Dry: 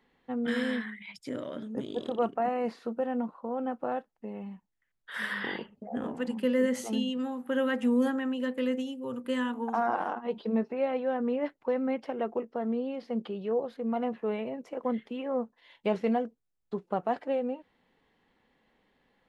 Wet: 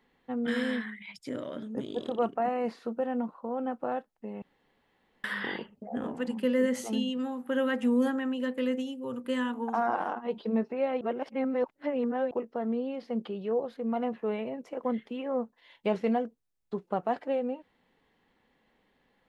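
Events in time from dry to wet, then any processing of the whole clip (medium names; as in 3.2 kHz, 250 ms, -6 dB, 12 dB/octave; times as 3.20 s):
4.42–5.24 s: room tone
11.01–12.31 s: reverse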